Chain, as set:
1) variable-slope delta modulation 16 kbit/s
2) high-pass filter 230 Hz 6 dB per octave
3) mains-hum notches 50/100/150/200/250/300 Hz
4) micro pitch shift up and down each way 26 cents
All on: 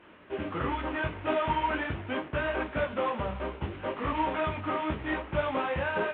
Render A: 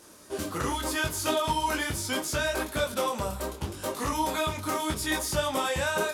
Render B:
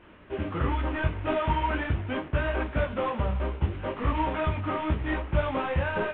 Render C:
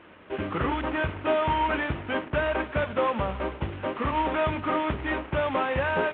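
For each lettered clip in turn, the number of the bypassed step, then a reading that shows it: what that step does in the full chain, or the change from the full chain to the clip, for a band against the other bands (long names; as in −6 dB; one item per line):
1, 4 kHz band +9.5 dB
2, 125 Hz band +8.5 dB
4, change in crest factor −2.5 dB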